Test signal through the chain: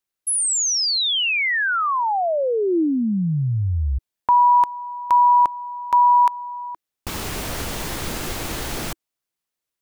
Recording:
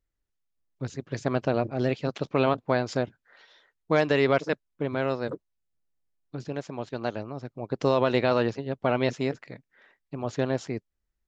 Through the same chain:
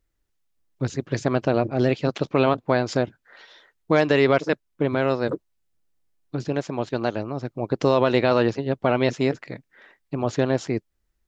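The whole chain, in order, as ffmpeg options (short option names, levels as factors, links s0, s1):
-filter_complex "[0:a]equalizer=f=330:w=4.7:g=3,asplit=2[s0][s1];[s1]alimiter=limit=0.119:level=0:latency=1:release=390,volume=1.33[s2];[s0][s2]amix=inputs=2:normalize=0"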